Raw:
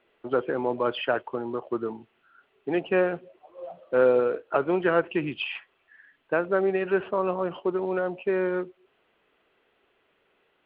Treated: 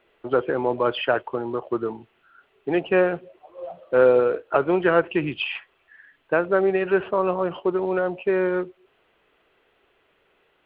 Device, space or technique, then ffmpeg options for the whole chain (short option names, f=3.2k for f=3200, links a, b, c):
low shelf boost with a cut just above: -af "lowshelf=f=75:g=6.5,equalizer=f=230:t=o:w=0.56:g=-3.5,volume=4dB"